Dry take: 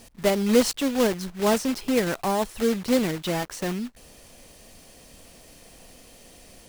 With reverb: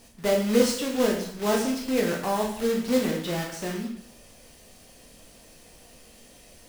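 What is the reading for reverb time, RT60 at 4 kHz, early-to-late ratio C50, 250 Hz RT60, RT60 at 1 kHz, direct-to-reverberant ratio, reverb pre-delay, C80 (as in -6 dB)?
0.65 s, 0.60 s, 5.5 dB, 0.70 s, 0.65 s, -0.5 dB, 13 ms, 9.0 dB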